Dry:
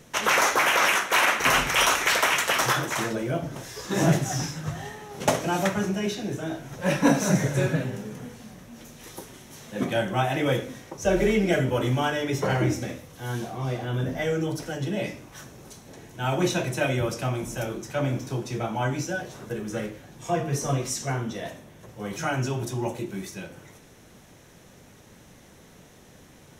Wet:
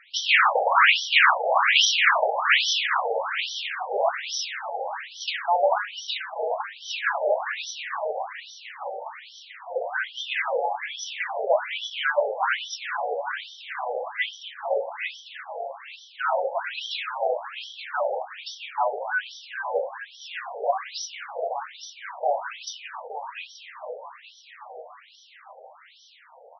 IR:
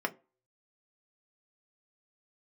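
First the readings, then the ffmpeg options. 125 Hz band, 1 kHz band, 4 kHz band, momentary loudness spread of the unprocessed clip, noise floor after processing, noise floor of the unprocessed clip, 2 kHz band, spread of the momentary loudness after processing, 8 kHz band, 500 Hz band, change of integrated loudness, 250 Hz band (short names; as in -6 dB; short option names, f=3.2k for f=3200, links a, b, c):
under -40 dB, +3.0 dB, +4.5 dB, 19 LU, -52 dBFS, -52 dBFS, +3.0 dB, 20 LU, -5.5 dB, +0.5 dB, +0.5 dB, under -35 dB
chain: -filter_complex "[0:a]asplit=9[a][b][c][d][e][f][g][h][i];[b]adelay=440,afreqshift=71,volume=-8dB[j];[c]adelay=880,afreqshift=142,volume=-12dB[k];[d]adelay=1320,afreqshift=213,volume=-16dB[l];[e]adelay=1760,afreqshift=284,volume=-20dB[m];[f]adelay=2200,afreqshift=355,volume=-24.1dB[n];[g]adelay=2640,afreqshift=426,volume=-28.1dB[o];[h]adelay=3080,afreqshift=497,volume=-32.1dB[p];[i]adelay=3520,afreqshift=568,volume=-36.1dB[q];[a][j][k][l][m][n][o][p][q]amix=inputs=9:normalize=0,aeval=exprs='0.447*(cos(1*acos(clip(val(0)/0.447,-1,1)))-cos(1*PI/2))+0.0355*(cos(5*acos(clip(val(0)/0.447,-1,1)))-cos(5*PI/2))':c=same,afftfilt=real='re*between(b*sr/1024,600*pow(4300/600,0.5+0.5*sin(2*PI*1.2*pts/sr))/1.41,600*pow(4300/600,0.5+0.5*sin(2*PI*1.2*pts/sr))*1.41)':imag='im*between(b*sr/1024,600*pow(4300/600,0.5+0.5*sin(2*PI*1.2*pts/sr))/1.41,600*pow(4300/600,0.5+0.5*sin(2*PI*1.2*pts/sr))*1.41)':win_size=1024:overlap=0.75,volume=5.5dB"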